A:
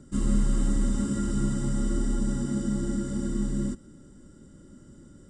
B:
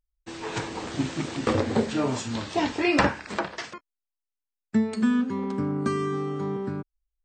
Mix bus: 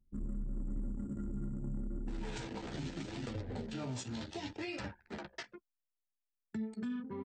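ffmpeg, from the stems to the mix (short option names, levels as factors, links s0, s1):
-filter_complex "[0:a]volume=0.299,afade=t=out:st=2.22:d=0.29:silence=0.334965[s0];[1:a]flanger=delay=8:depth=8.2:regen=8:speed=0.69:shape=triangular,alimiter=limit=0.1:level=0:latency=1:release=392,bandreject=f=1100:w=6.3,adelay=1800,volume=0.841[s1];[s0][s1]amix=inputs=2:normalize=0,anlmdn=0.398,acrossover=split=160|3000[s2][s3][s4];[s3]acompressor=threshold=0.01:ratio=6[s5];[s2][s5][s4]amix=inputs=3:normalize=0,alimiter=level_in=2.37:limit=0.0631:level=0:latency=1:release=65,volume=0.422"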